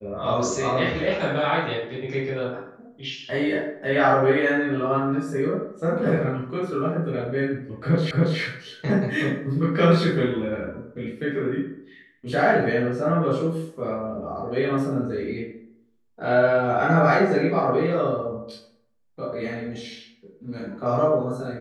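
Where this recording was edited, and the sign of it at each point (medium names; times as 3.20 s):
8.11 s: repeat of the last 0.28 s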